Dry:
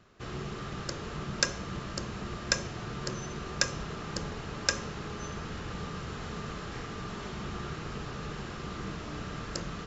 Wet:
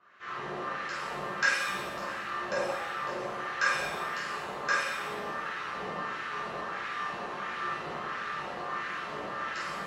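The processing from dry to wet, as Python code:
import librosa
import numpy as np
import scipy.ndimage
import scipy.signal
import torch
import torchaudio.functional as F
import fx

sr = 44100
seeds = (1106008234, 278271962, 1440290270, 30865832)

y = fx.filter_lfo_bandpass(x, sr, shape='sine', hz=1.5, low_hz=640.0, high_hz=1800.0, q=1.9)
y = fx.rev_shimmer(y, sr, seeds[0], rt60_s=1.0, semitones=7, shimmer_db=-8, drr_db=-10.0)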